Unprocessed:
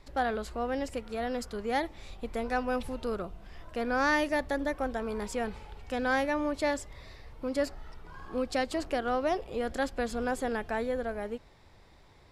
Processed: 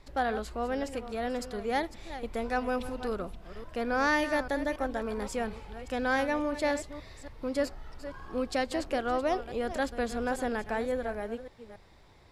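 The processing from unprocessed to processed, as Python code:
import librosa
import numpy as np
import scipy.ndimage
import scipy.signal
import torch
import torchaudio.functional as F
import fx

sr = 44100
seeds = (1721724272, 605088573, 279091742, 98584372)

y = fx.reverse_delay(x, sr, ms=280, wet_db=-12.0)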